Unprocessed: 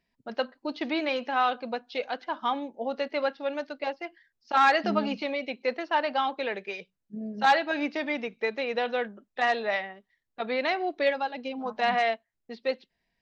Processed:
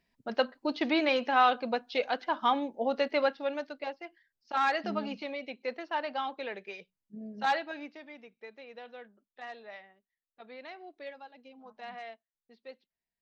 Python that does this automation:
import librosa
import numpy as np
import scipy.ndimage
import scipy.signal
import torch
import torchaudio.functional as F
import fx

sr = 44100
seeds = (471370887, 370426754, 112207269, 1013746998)

y = fx.gain(x, sr, db=fx.line((3.14, 1.5), (3.99, -7.0), (7.55, -7.0), (8.04, -18.5)))